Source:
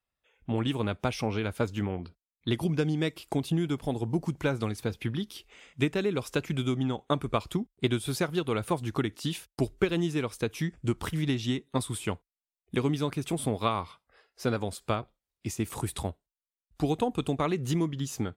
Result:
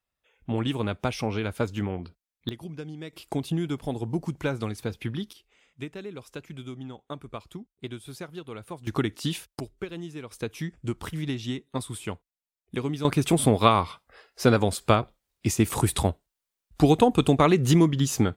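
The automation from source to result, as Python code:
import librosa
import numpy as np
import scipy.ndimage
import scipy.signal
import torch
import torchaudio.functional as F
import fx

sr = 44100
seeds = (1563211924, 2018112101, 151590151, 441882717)

y = fx.gain(x, sr, db=fx.steps((0.0, 1.5), (2.49, -10.5), (3.13, 0.0), (5.33, -10.0), (8.87, 3.0), (9.6, -9.0), (10.31, -2.0), (13.05, 9.0)))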